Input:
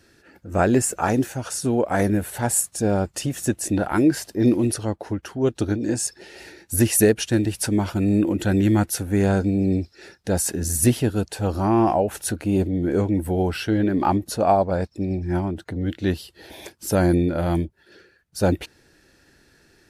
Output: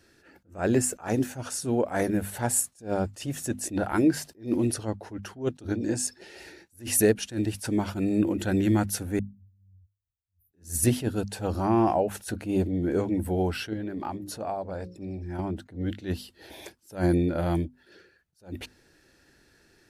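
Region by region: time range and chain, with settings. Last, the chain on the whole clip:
9.19–10.53 inverse Chebyshev band-stop 400–8900 Hz, stop band 70 dB + pre-emphasis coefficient 0.9
13.73–15.39 notches 60/120/180/240/300/360/420/480/540 Hz + compressor 2:1, threshold -32 dBFS
whole clip: notches 50/100/150/200/250 Hz; attack slew limiter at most 210 dB/s; gain -4 dB

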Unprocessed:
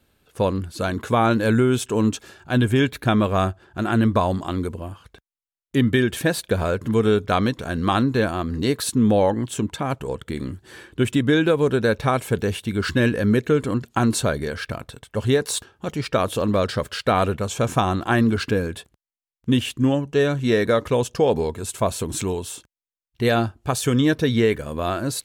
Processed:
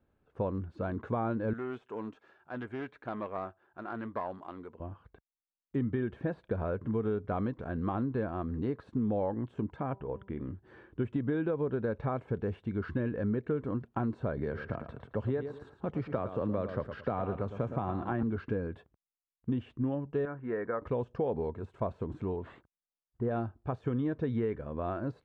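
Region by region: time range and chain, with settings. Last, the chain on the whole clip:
1.53–4.8 self-modulated delay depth 0.11 ms + HPF 1000 Hz 6 dB/oct
9.9–10.48 Chebyshev low-pass 3500 Hz, order 6 + de-hum 195.4 Hz, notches 5
14.37–18.23 feedback echo 0.11 s, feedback 24%, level -11.5 dB + three-band squash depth 40%
20.25–20.82 LPF 1700 Hz 24 dB/oct + tilt +4 dB/oct + notch 600 Hz, Q 10
22.36–23.31 band shelf 3400 Hz -15.5 dB + careless resampling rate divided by 4×, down none, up hold
whole clip: de-esser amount 75%; LPF 1300 Hz 12 dB/oct; compressor 3:1, threshold -20 dBFS; gain -8.5 dB

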